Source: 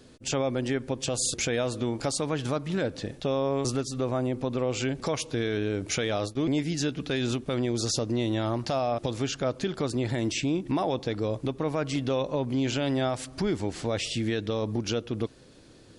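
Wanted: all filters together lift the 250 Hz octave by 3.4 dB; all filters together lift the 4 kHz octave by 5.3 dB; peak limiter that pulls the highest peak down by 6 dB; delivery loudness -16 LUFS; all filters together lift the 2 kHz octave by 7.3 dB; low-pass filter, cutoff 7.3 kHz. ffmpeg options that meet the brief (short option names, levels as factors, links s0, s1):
-af "lowpass=7300,equalizer=f=250:t=o:g=4,equalizer=f=2000:t=o:g=8,equalizer=f=4000:t=o:g=4.5,volume=3.98,alimiter=limit=0.501:level=0:latency=1"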